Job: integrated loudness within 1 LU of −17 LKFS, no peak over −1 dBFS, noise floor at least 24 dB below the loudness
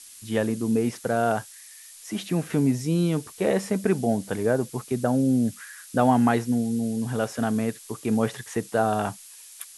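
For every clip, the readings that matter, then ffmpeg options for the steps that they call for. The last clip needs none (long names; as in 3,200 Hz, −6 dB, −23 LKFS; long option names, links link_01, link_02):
background noise floor −47 dBFS; target noise floor −50 dBFS; integrated loudness −25.5 LKFS; sample peak −7.0 dBFS; target loudness −17.0 LKFS
→ -af "afftdn=noise_reduction=6:noise_floor=-47"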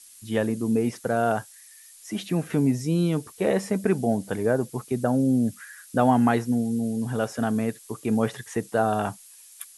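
background noise floor −50 dBFS; integrated loudness −25.5 LKFS; sample peak −7.0 dBFS; target loudness −17.0 LKFS
→ -af "volume=8.5dB,alimiter=limit=-1dB:level=0:latency=1"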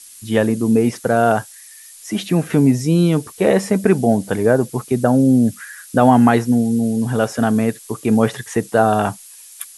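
integrated loudness −17.0 LKFS; sample peak −1.0 dBFS; background noise floor −41 dBFS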